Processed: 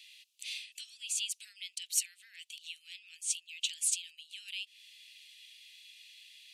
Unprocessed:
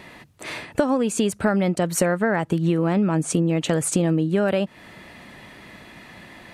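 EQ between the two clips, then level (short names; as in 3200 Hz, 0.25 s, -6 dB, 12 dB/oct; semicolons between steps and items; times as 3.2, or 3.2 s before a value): steep high-pass 2700 Hz 48 dB/oct; high shelf 6800 Hz -6.5 dB; 0.0 dB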